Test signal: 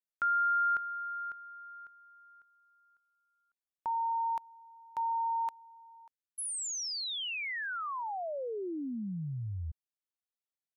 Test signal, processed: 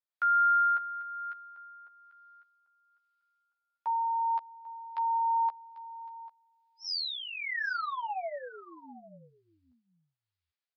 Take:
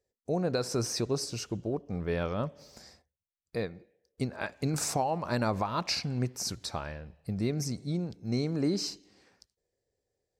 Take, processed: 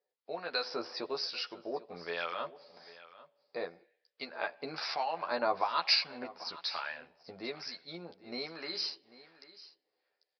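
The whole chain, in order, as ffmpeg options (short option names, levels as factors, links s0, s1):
-filter_complex "[0:a]highpass=730,acrossover=split=1100[s0][s1];[s0]aeval=exprs='val(0)*(1-0.7/2+0.7/2*cos(2*PI*1.1*n/s))':c=same[s2];[s1]aeval=exprs='val(0)*(1-0.7/2-0.7/2*cos(2*PI*1.1*n/s))':c=same[s3];[s2][s3]amix=inputs=2:normalize=0,asplit=2[s4][s5];[s5]adelay=12,volume=0.668[s6];[s4][s6]amix=inputs=2:normalize=0,aecho=1:1:794:0.126,aresample=11025,aresample=44100,volume=1.68"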